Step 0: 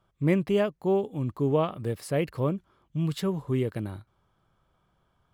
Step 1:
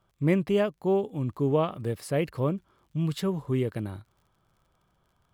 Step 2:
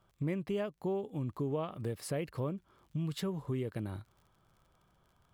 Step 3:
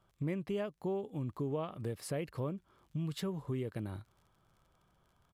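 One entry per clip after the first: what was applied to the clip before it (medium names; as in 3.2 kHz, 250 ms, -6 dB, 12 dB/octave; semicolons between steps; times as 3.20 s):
crackle 43 per s -55 dBFS
compression 3:1, threshold -35 dBFS, peak gain reduction 13 dB
resampled via 32 kHz; trim -1.5 dB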